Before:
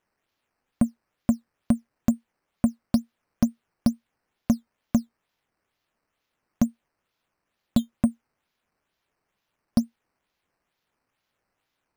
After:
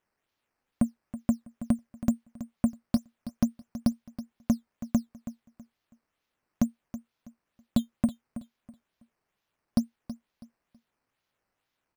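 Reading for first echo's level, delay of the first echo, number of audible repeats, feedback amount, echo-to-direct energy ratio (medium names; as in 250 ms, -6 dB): -13.5 dB, 325 ms, 2, 27%, -13.0 dB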